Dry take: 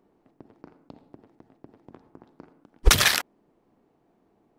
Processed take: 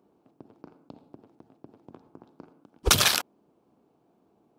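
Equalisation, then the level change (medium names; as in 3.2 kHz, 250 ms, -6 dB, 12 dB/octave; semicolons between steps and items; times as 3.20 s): high-pass 81 Hz; peaking EQ 1.9 kHz -10 dB 0.37 oct; 0.0 dB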